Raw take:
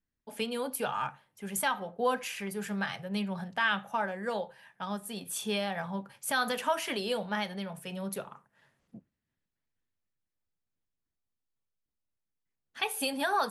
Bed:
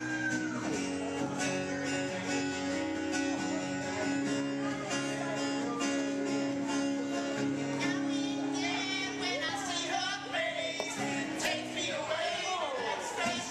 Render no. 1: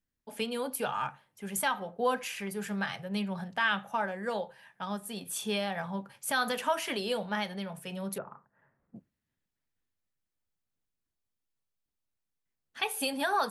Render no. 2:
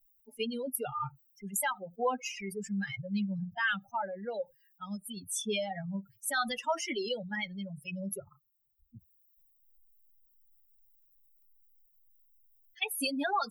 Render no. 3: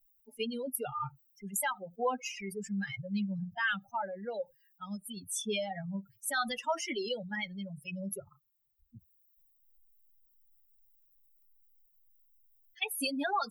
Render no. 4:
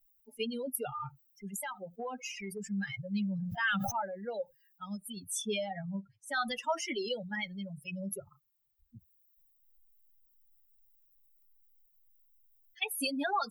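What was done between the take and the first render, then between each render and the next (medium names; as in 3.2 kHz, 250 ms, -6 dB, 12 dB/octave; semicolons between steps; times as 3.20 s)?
8.18–8.96 s: low-pass 1.7 kHz 24 dB/octave
expander on every frequency bin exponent 3; level flattener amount 50%
trim -1 dB
0.94–2.67 s: compression, threshold -35 dBFS; 3.22–4.00 s: decay stretcher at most 27 dB/s; 5.54–6.48 s: distance through air 85 m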